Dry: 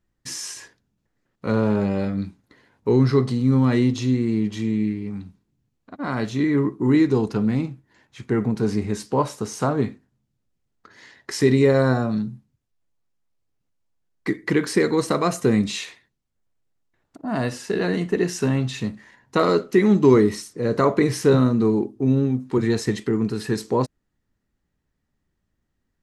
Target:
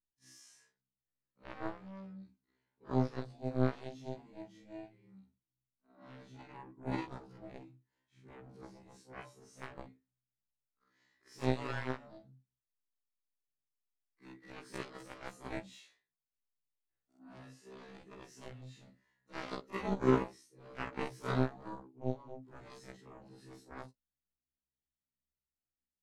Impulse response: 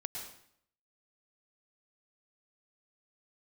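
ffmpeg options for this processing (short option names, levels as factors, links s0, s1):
-af "afftfilt=real='re':imag='-im':win_size=4096:overlap=0.75,aeval=exprs='0.501*(cos(1*acos(clip(val(0)/0.501,-1,1)))-cos(1*PI/2))+0.178*(cos(3*acos(clip(val(0)/0.501,-1,1)))-cos(3*PI/2))':c=same,asoftclip=type=tanh:threshold=0.133,afftfilt=real='re*1.73*eq(mod(b,3),0)':imag='im*1.73*eq(mod(b,3),0)':win_size=2048:overlap=0.75,volume=1.5"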